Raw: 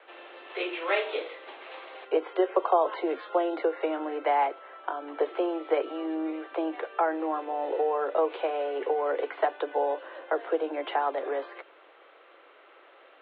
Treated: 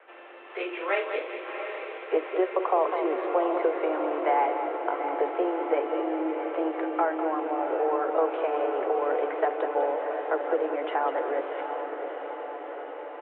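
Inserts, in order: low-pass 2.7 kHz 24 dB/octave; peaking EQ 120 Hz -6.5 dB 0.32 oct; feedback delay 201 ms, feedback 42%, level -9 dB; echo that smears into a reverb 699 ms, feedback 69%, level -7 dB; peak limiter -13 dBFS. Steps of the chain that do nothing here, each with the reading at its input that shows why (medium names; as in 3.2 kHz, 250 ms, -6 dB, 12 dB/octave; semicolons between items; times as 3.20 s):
peaking EQ 120 Hz: input has nothing below 270 Hz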